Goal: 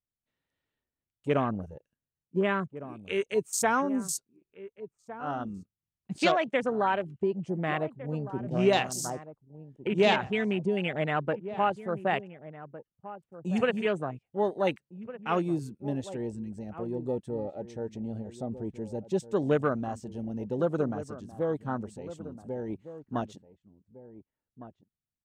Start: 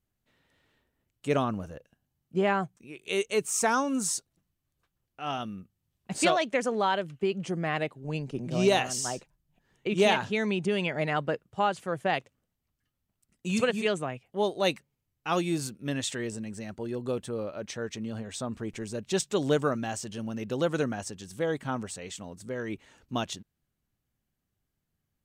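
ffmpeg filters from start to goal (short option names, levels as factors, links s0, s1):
-filter_complex "[0:a]afwtdn=0.02,asettb=1/sr,asplit=3[s0][s1][s2];[s0]atrim=end=1.694[s3];[s1]atrim=start=1.69:end=3.36,asetpts=PTS-STARTPTS,afade=t=in:d=0.004:c=qsin,afade=t=out:st=1.666:d=0.004:c=qsin,equalizer=f=750:t=o:w=0.3:g=-12.5[s4];[s2]atrim=start=3.356[s5];[s3][s4]acrossfade=d=0.004:c1=hsin:c2=qsin[s6];[s6][s5]acrossfade=d=0.004:c1=qsin:c2=hsin,asplit=2[s7][s8];[s8]adelay=1458,volume=0.2,highshelf=f=4000:g=-32.8[s9];[s7][s9]amix=inputs=2:normalize=0"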